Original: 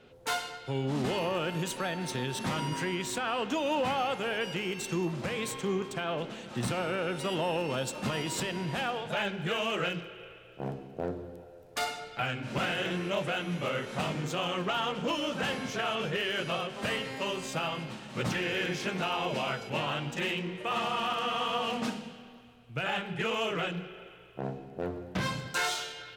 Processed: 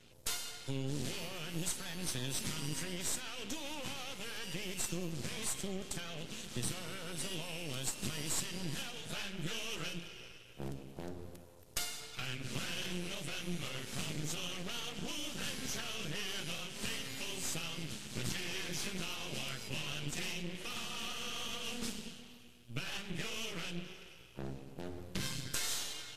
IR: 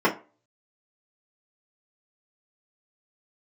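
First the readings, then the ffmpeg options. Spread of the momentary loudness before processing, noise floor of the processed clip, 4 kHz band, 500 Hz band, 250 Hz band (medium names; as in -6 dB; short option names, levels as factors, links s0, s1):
8 LU, -55 dBFS, -4.5 dB, -14.0 dB, -9.0 dB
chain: -af "highshelf=f=4600:g=10.5,acompressor=threshold=0.02:ratio=2.5,equalizer=f=810:w=0.58:g=-15,aeval=exprs='max(val(0),0)':c=same,volume=1.68" -ar 44100 -c:a libvorbis -b:a 32k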